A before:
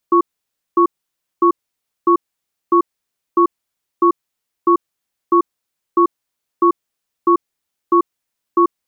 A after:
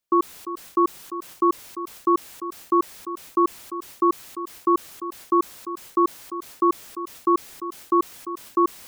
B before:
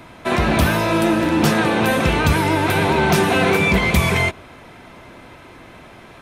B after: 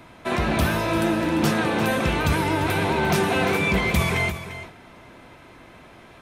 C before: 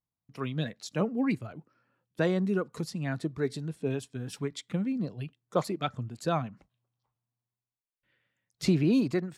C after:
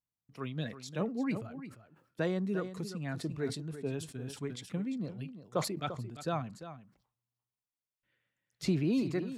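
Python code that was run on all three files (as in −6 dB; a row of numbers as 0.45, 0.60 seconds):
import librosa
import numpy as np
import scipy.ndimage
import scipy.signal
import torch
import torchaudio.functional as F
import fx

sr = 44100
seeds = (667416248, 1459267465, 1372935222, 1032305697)

p1 = x + fx.echo_single(x, sr, ms=346, db=-12.5, dry=0)
p2 = fx.sustainer(p1, sr, db_per_s=110.0)
y = p2 * librosa.db_to_amplitude(-5.5)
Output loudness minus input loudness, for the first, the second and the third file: −6.5, −5.0, −5.0 LU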